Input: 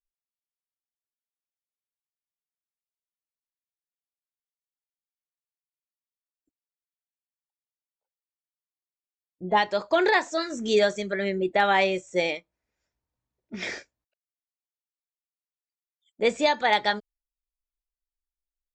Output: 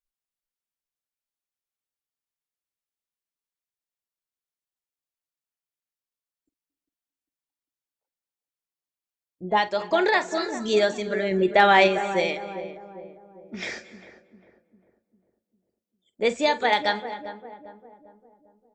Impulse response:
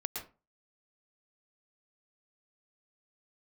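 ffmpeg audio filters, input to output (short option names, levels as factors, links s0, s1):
-filter_complex "[0:a]asettb=1/sr,asplit=3[s0][s1][s2];[s0]atrim=end=11.314[s3];[s1]atrim=start=11.31:end=11.88,asetpts=PTS-STARTPTS,afade=t=in:d=0.004:c=qsin,afade=t=out:st=0.566:d=0.004:c=qsin,acontrast=27[s4];[s2]atrim=start=11.876[s5];[s3][s4]acrossfade=d=0.004:c1=hsin:c2=qsin[s6];[s6][s5]acrossfade=d=0.004:c1=qsin:c2=hsin,asplit=2[s7][s8];[s8]adelay=400,lowpass=f=880:p=1,volume=0.316,asplit=2[s9][s10];[s10]adelay=400,lowpass=f=880:p=1,volume=0.52,asplit=2[s11][s12];[s12]adelay=400,lowpass=f=880:p=1,volume=0.52,asplit=2[s13][s14];[s14]adelay=400,lowpass=f=880:p=1,volume=0.52,asplit=2[s15][s16];[s16]adelay=400,lowpass=f=880:p=1,volume=0.52,asplit=2[s17][s18];[s18]adelay=400,lowpass=f=880:p=1,volume=0.52[s19];[s7][s9][s11][s13][s15][s17][s19]amix=inputs=7:normalize=0,asplit=2[s20][s21];[1:a]atrim=start_sample=2205,asetrate=27783,aresample=44100,adelay=47[s22];[s21][s22]afir=irnorm=-1:irlink=0,volume=0.126[s23];[s20][s23]amix=inputs=2:normalize=0"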